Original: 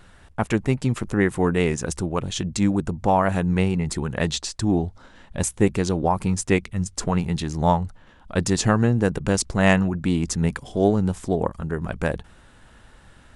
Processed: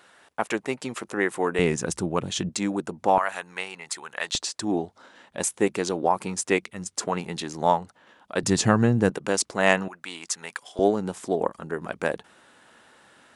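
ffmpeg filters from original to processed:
-af "asetnsamples=n=441:p=0,asendcmd='1.59 highpass f 150;2.49 highpass f 320;3.18 highpass f 1000;4.35 highpass f 320;8.43 highpass f 110;9.1 highpass f 340;9.88 highpass f 990;10.79 highpass f 300',highpass=410"

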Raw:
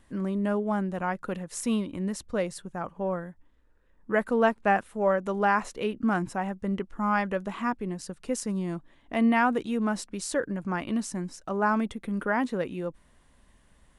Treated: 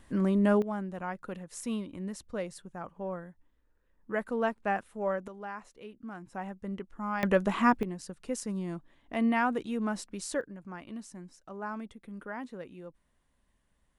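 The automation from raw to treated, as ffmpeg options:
-af "asetnsamples=n=441:p=0,asendcmd='0.62 volume volume -7dB;5.28 volume volume -17dB;6.33 volume volume -8dB;7.23 volume volume 5dB;7.83 volume volume -4.5dB;10.41 volume volume -13dB',volume=3dB"

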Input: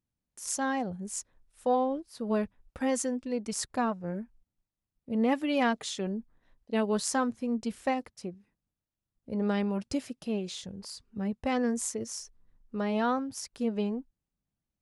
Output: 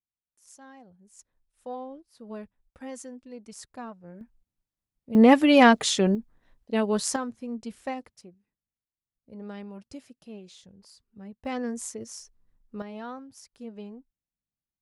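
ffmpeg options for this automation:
-af "asetnsamples=n=441:p=0,asendcmd='1.19 volume volume -10.5dB;4.21 volume volume -2dB;5.15 volume volume 11dB;6.15 volume volume 3dB;7.16 volume volume -4dB;8.21 volume volume -11dB;11.45 volume volume -3dB;12.82 volume volume -10.5dB',volume=-19dB"

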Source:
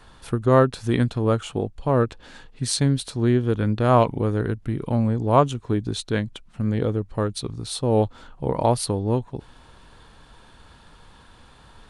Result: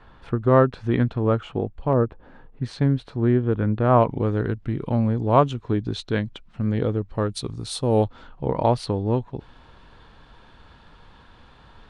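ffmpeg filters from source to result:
-af "asetnsamples=n=441:p=0,asendcmd='1.93 lowpass f 1100;2.62 lowpass f 1900;4.1 lowpass f 4300;7.32 lowpass f 9900;8.04 lowpass f 4000',lowpass=2.4k"

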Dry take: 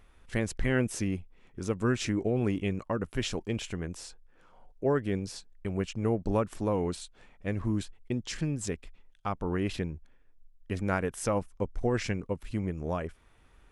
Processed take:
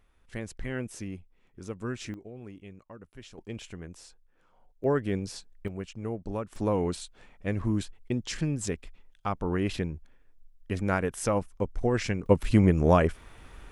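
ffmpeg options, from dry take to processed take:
-af "asetnsamples=n=441:p=0,asendcmd='2.14 volume volume -16dB;3.38 volume volume -6.5dB;4.84 volume volume 1dB;5.68 volume volume -6dB;6.56 volume volume 2dB;12.26 volume volume 12dB',volume=-7dB"

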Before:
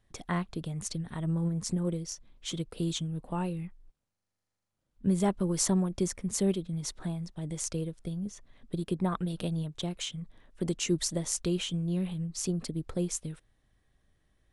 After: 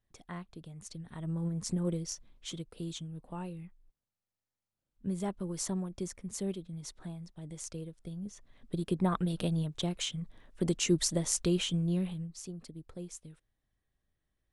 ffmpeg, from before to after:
-af "volume=9dB,afade=t=in:st=0.83:d=1.28:silence=0.266073,afade=t=out:st=2.11:d=0.54:silence=0.398107,afade=t=in:st=7.97:d=1.18:silence=0.354813,afade=t=out:st=11.85:d=0.58:silence=0.223872"

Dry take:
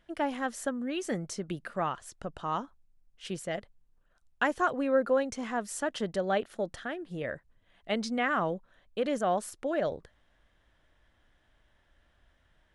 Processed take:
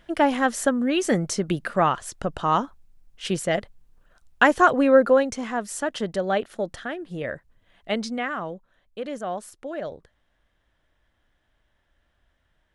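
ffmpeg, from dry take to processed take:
-af "volume=11dB,afade=t=out:st=4.87:d=0.59:silence=0.501187,afade=t=out:st=7.93:d=0.44:silence=0.446684"

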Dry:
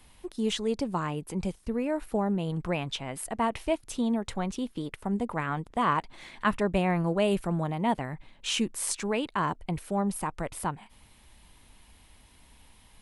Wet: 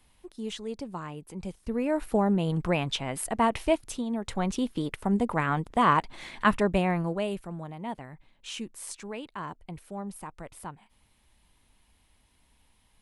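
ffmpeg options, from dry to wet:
-af "volume=13.5dB,afade=t=in:st=1.41:d=0.61:silence=0.298538,afade=t=out:st=3.83:d=0.22:silence=0.334965,afade=t=in:st=4.05:d=0.47:silence=0.316228,afade=t=out:st=6.4:d=1.01:silence=0.223872"

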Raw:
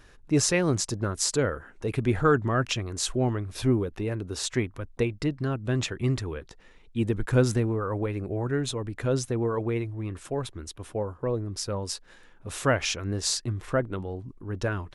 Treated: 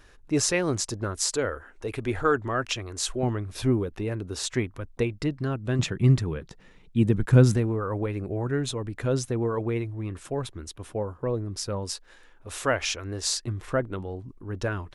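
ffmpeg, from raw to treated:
-af "asetnsamples=n=441:p=0,asendcmd='1.18 equalizer g -11.5;3.23 equalizer g 0;5.79 equalizer g 10.5;7.56 equalizer g 1;11.93 equalizer g -10.5;13.47 equalizer g -1.5',equalizer=f=160:t=o:w=1.1:g=-5"

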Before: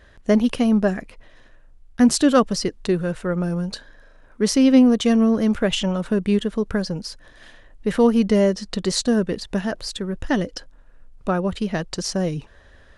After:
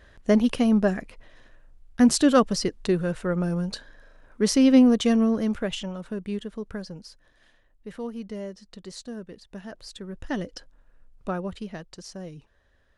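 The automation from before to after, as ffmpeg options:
-af "volume=8dB,afade=t=out:st=4.96:d=0.95:silence=0.354813,afade=t=out:st=6.72:d=1.29:silence=0.473151,afade=t=in:st=9.47:d=1.02:silence=0.298538,afade=t=out:st=11.3:d=0.59:silence=0.398107"

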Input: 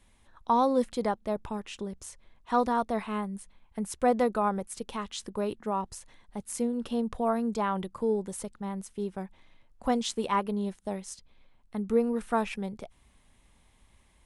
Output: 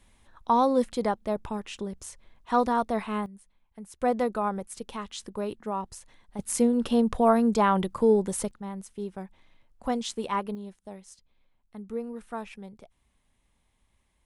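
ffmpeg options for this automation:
-af "asetnsamples=n=441:p=0,asendcmd='3.26 volume volume -10dB;4.01 volume volume -1dB;6.39 volume volume 7dB;8.51 volume volume -1.5dB;10.55 volume volume -8.5dB',volume=2dB"

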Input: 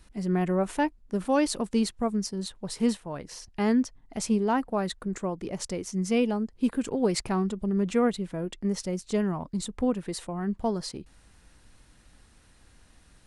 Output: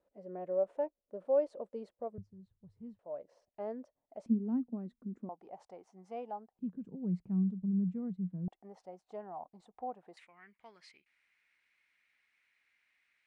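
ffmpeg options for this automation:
-af "asetnsamples=n=441:p=0,asendcmd='2.18 bandpass f 100;2.99 bandpass f 590;4.26 bandpass f 240;5.29 bandpass f 770;6.59 bandpass f 180;8.48 bandpass f 750;10.17 bandpass f 2200',bandpass=f=560:t=q:w=7.2:csg=0"

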